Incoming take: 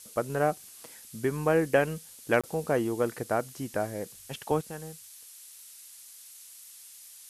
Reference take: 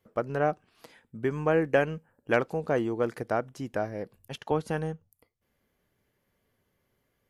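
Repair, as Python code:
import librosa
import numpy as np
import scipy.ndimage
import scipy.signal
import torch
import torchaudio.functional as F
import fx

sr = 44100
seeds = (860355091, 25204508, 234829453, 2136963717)

y = fx.fix_interpolate(x, sr, at_s=(2.41,), length_ms=26.0)
y = fx.noise_reduce(y, sr, print_start_s=6.77, print_end_s=7.27, reduce_db=26.0)
y = fx.fix_level(y, sr, at_s=4.61, step_db=10.0)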